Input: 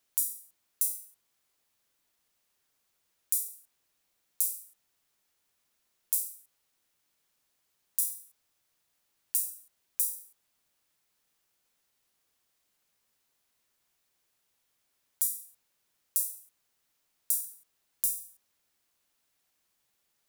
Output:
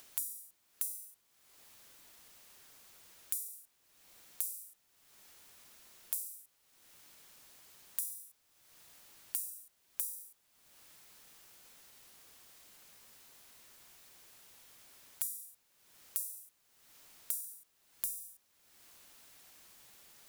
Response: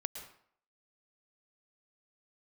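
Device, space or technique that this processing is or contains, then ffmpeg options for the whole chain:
upward and downward compression: -af "acompressor=mode=upward:threshold=-48dB:ratio=2.5,acompressor=threshold=-35dB:ratio=8,volume=2.5dB"

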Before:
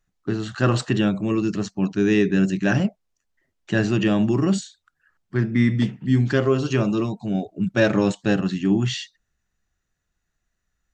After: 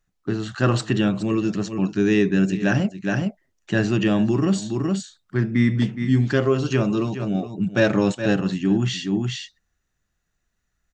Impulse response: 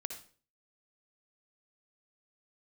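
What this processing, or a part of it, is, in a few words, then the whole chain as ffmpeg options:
ducked delay: -filter_complex "[0:a]asplit=3[link_01][link_02][link_03];[link_02]adelay=418,volume=-3dB[link_04];[link_03]apad=whole_len=500683[link_05];[link_04][link_05]sidechaincompress=threshold=-36dB:ratio=8:attack=37:release=164[link_06];[link_01][link_06]amix=inputs=2:normalize=0"

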